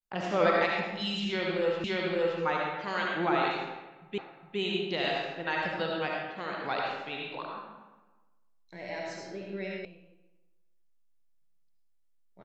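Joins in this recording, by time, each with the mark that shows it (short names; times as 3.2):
1.84 repeat of the last 0.57 s
4.18 repeat of the last 0.41 s
9.85 sound cut off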